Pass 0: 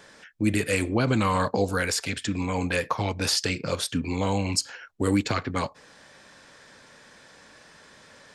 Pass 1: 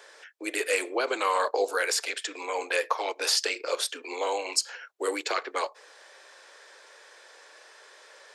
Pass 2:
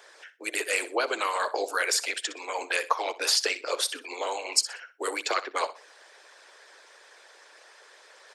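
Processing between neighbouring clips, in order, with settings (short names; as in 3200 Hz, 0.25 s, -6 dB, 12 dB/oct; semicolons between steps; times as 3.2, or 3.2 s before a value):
steep high-pass 370 Hz 48 dB/oct
feedback echo 62 ms, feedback 29%, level -12 dB; harmonic-percussive split harmonic -12 dB; gain +3 dB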